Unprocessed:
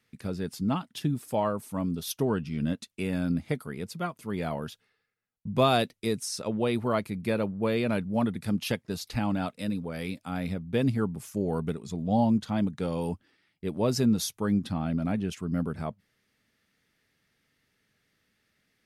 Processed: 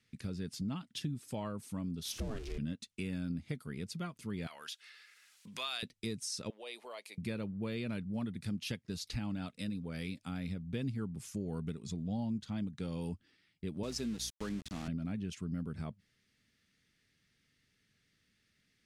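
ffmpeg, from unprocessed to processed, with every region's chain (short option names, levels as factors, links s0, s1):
-filter_complex "[0:a]asettb=1/sr,asplit=3[s0][s1][s2];[s0]atrim=end=2.054[s3];[s1]atrim=start=2.05:end=2.58,asetpts=PTS-STARTPTS,afade=t=in:d=0.004:c=qsin,afade=t=out:st=0.526:d=0.004:c=qsin,aeval=exprs='val(0)+0.5*0.0188*sgn(val(0))':c=same,aeval=exprs='val(0)*sin(2*PI*210*n/s)':c=same[s4];[s2]atrim=start=2.576[s5];[s3][s4]acrossfade=d=0.004:c1=hsin:c2=qsin[s6];[s6][s5]acrossfade=d=0.004:c1=qsin:c2=hsin,asettb=1/sr,asplit=3[s7][s8][s9];[s7]atrim=end=4.474[s10];[s8]atrim=start=4.47:end=5.83,asetpts=PTS-STARTPTS,afade=t=in:d=0.004:c=qsin,afade=t=out:st=1.356:d=0.004:c=qsin,highpass=1300,acompressor=mode=upward:threshold=0.02:ratio=2.5:attack=3.2:release=140:knee=2.83:detection=peak[s11];[s9]atrim=start=5.826[s12];[s10][s11]acrossfade=d=0.004:c1=hsin:c2=qsin[s13];[s13][s12]acrossfade=d=0.004:c1=qsin:c2=hsin,asettb=1/sr,asplit=3[s14][s15][s16];[s14]atrim=end=6.504[s17];[s15]atrim=start=6.5:end=7.18,asetpts=PTS-STARTPTS,afade=t=in:d=0.004:c=qsin,afade=t=out:st=0.676:d=0.004:c=qsin,highpass=f=540:w=0.5412,highpass=f=540:w=1.3066,equalizer=f=1400:t=o:w=0.55:g=-11,acompressor=threshold=0.01:ratio=2:attack=3.2:release=140:knee=1:detection=peak[s18];[s16]atrim=start=7.176[s19];[s17][s18]acrossfade=d=0.004:c1=hsin:c2=qsin[s20];[s20][s19]acrossfade=d=0.004:c1=qsin:c2=hsin,asettb=1/sr,asplit=3[s21][s22][s23];[s21]atrim=end=13.834[s24];[s22]atrim=start=13.83:end=14.88,asetpts=PTS-STARTPTS,afade=t=in:d=0.004:c=qsin,afade=t=out:st=1.046:d=0.004:c=qsin,highpass=270,aeval=exprs='val(0)+0.00562*(sin(2*PI*60*n/s)+sin(2*PI*2*60*n/s)/2+sin(2*PI*3*60*n/s)/3+sin(2*PI*4*60*n/s)/4+sin(2*PI*5*60*n/s)/5)':c=same,aeval=exprs='val(0)*gte(abs(val(0)),0.015)':c=same[s25];[s23]atrim=start=14.876[s26];[s24][s25]acrossfade=d=0.004:c1=hsin:c2=qsin[s27];[s27][s26]acrossfade=d=0.004:c1=qsin:c2=hsin,lowpass=8600,equalizer=f=750:t=o:w=2.2:g=-11,acompressor=threshold=0.0112:ratio=2.5,volume=1.12"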